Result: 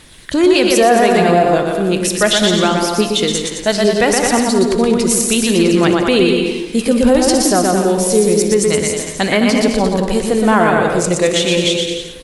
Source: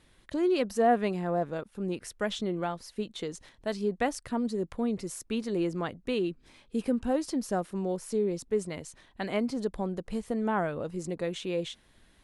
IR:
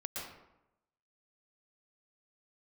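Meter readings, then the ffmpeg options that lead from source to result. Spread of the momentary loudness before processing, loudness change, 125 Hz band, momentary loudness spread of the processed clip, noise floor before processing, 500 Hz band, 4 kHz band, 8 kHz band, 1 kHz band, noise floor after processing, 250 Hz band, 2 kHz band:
9 LU, +18.0 dB, +17.0 dB, 5 LU, -63 dBFS, +17.5 dB, +25.0 dB, +27.0 dB, +17.0 dB, -28 dBFS, +17.0 dB, +21.0 dB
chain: -filter_complex "[0:a]highshelf=f=2.2k:g=10,asplit=2[a][b];[b]aecho=0:1:120|216|292.8|354.2|403.4:0.631|0.398|0.251|0.158|0.1[c];[a][c]amix=inputs=2:normalize=0,aphaser=in_gain=1:out_gain=1:delay=3:decay=0.23:speed=0.33:type=triangular,asplit=2[d][e];[1:a]atrim=start_sample=2205,adelay=61[f];[e][f]afir=irnorm=-1:irlink=0,volume=-13dB[g];[d][g]amix=inputs=2:normalize=0,flanger=delay=9.9:depth=7.2:regen=-86:speed=1.1:shape=triangular,alimiter=level_in=21dB:limit=-1dB:release=50:level=0:latency=1,volume=-1dB"

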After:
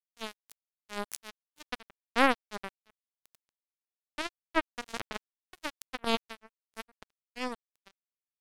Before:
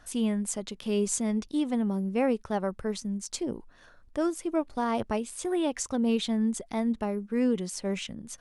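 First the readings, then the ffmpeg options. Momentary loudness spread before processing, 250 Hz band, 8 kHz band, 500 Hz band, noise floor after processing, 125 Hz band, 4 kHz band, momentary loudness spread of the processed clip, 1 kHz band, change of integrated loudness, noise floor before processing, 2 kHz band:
7 LU, -13.5 dB, -14.0 dB, -8.5 dB, under -85 dBFS, -19.0 dB, 0.0 dB, 22 LU, +0.5 dB, -5.0 dB, -56 dBFS, +6.5 dB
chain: -af "acrusher=bits=2:mix=0:aa=0.5,volume=8dB"

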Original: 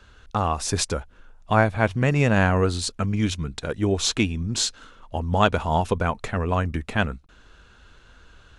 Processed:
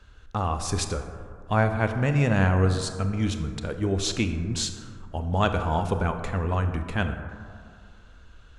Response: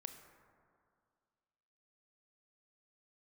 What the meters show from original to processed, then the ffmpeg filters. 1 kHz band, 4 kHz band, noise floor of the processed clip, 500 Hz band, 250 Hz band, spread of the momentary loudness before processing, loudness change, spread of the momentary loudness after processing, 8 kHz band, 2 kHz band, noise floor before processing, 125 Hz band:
-4.0 dB, -5.0 dB, -50 dBFS, -3.5 dB, -2.5 dB, 10 LU, -2.5 dB, 14 LU, -5.0 dB, -4.5 dB, -53 dBFS, -0.5 dB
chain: -filter_complex "[0:a]lowshelf=f=110:g=7[a];[1:a]atrim=start_sample=2205[b];[a][b]afir=irnorm=-1:irlink=0"

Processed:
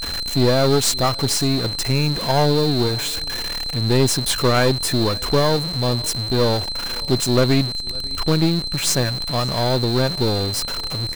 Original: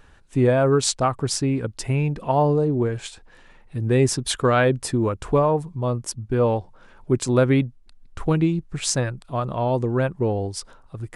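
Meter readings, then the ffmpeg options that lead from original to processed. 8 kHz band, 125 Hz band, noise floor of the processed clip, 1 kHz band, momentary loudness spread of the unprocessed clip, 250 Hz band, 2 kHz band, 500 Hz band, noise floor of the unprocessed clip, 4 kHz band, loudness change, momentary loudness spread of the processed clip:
+5.0 dB, +2.0 dB, -28 dBFS, +1.0 dB, 10 LU, +2.0 dB, +3.5 dB, +1.0 dB, -51 dBFS, +13.5 dB, +3.0 dB, 7 LU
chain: -af "aeval=exprs='val(0)+0.5*0.0631*sgn(val(0))':c=same,aeval=exprs='val(0)+0.0562*sin(2*PI*4100*n/s)':c=same,highshelf=f=9.6k:g=5,aecho=1:1:553|1106:0.0668|0.0154,aeval=exprs='0.841*(cos(1*acos(clip(val(0)/0.841,-1,1)))-cos(1*PI/2))+0.075*(cos(8*acos(clip(val(0)/0.841,-1,1)))-cos(8*PI/2))':c=same,volume=-1dB"

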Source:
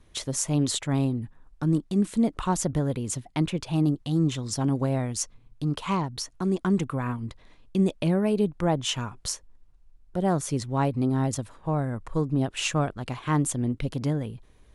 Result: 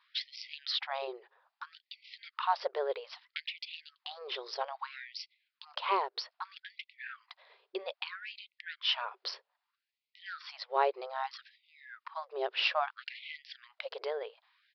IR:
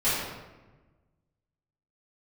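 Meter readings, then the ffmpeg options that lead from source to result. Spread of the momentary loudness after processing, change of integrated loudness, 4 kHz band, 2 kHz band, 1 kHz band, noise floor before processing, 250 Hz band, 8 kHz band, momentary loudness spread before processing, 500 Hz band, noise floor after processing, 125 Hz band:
18 LU, -9.5 dB, -0.5 dB, -0.5 dB, -2.5 dB, -57 dBFS, under -30 dB, -30.0 dB, 8 LU, -8.0 dB, under -85 dBFS, under -40 dB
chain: -af "aresample=11025,aresample=44100,afftfilt=real='re*gte(b*sr/1024,350*pow(2000/350,0.5+0.5*sin(2*PI*0.62*pts/sr)))':imag='im*gte(b*sr/1024,350*pow(2000/350,0.5+0.5*sin(2*PI*0.62*pts/sr)))':win_size=1024:overlap=0.75"

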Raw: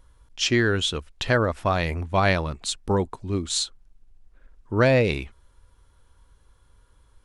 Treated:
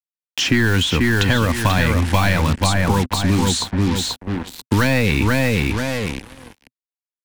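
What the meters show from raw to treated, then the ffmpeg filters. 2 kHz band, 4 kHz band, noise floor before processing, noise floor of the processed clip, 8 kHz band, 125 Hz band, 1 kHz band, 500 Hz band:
+7.5 dB, +6.5 dB, -59 dBFS, under -85 dBFS, +6.5 dB, +9.5 dB, +5.5 dB, +1.0 dB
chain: -filter_complex "[0:a]highpass=79,apsyclip=18.5dB,asplit=2[a][b];[b]adelay=487,lowpass=f=3.2k:p=1,volume=-5dB,asplit=2[c][d];[d]adelay=487,lowpass=f=3.2k:p=1,volume=0.31,asplit=2[e][f];[f]adelay=487,lowpass=f=3.2k:p=1,volume=0.31,asplit=2[g][h];[h]adelay=487,lowpass=f=3.2k:p=1,volume=0.31[i];[c][e][g][i]amix=inputs=4:normalize=0[j];[a][j]amix=inputs=2:normalize=0,acompressor=threshold=-10dB:ratio=2.5,highshelf=f=8.1k:g=2.5,acrusher=bits=3:mix=0:aa=0.5,equalizer=f=125:t=o:w=0.33:g=-6,equalizer=f=250:t=o:w=0.33:g=4,equalizer=f=400:t=o:w=0.33:g=-7,equalizer=f=630:t=o:w=0.33:g=-8,equalizer=f=1.25k:t=o:w=0.33:g=-7,acrossover=split=240|900|1900[k][l][m][n];[k]acompressor=threshold=-17dB:ratio=4[o];[l]acompressor=threshold=-28dB:ratio=4[p];[m]acompressor=threshold=-24dB:ratio=4[q];[n]acompressor=threshold=-27dB:ratio=4[r];[o][p][q][r]amix=inputs=4:normalize=0,volume=2dB"

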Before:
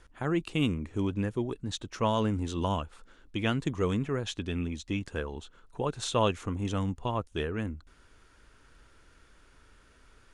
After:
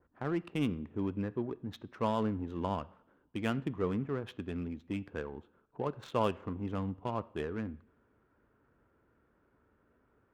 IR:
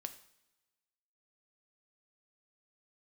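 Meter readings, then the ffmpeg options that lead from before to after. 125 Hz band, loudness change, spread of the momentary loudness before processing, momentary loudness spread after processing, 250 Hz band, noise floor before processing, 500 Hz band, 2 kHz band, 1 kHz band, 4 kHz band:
-7.0 dB, -5.0 dB, 9 LU, 10 LU, -4.0 dB, -60 dBFS, -4.0 dB, -7.0 dB, -4.0 dB, -12.0 dB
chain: -filter_complex "[0:a]highpass=110,adynamicsmooth=sensitivity=5:basefreq=1.1k,asplit=2[a][b];[1:a]atrim=start_sample=2205,lowpass=3k[c];[b][c]afir=irnorm=-1:irlink=0,volume=-0.5dB[d];[a][d]amix=inputs=2:normalize=0,adynamicequalizer=threshold=0.00794:dfrequency=2300:dqfactor=0.7:tfrequency=2300:tqfactor=0.7:attack=5:release=100:ratio=0.375:range=1.5:mode=cutabove:tftype=highshelf,volume=-8dB"

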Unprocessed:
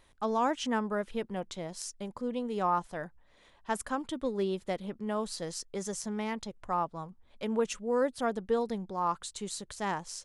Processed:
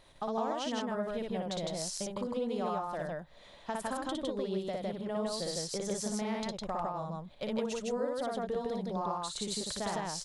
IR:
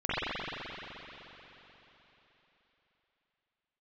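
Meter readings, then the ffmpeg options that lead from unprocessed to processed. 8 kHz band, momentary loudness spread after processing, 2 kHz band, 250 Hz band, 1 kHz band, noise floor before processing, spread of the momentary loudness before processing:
+1.0 dB, 4 LU, -4.0 dB, -1.5 dB, -4.0 dB, -63 dBFS, 10 LU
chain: -af "equalizer=f=160:t=o:w=0.67:g=5,equalizer=f=630:t=o:w=0.67:g=7,equalizer=f=4k:t=o:w=0.67:g=6,acompressor=threshold=-35dB:ratio=6,aecho=1:1:58.31|157.4:0.794|0.891"

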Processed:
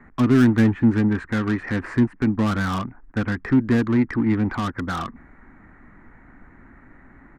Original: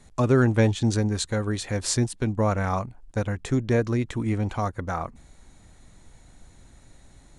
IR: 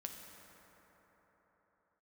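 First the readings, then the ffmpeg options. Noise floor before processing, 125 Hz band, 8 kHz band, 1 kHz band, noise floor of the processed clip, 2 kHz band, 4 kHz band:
-53 dBFS, +0.5 dB, under -10 dB, +1.0 dB, -50 dBFS, +5.0 dB, -3.0 dB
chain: -filter_complex "[0:a]firequalizer=gain_entry='entry(120,0);entry(250,12);entry(530,1);entry(1200,13);entry(1900,13);entry(3500,-24);entry(6300,-30)':delay=0.05:min_phase=1,acrossover=split=290|2600[a][b][c];[b]asoftclip=type=tanh:threshold=-26.5dB[d];[a][d][c]amix=inputs=3:normalize=0"

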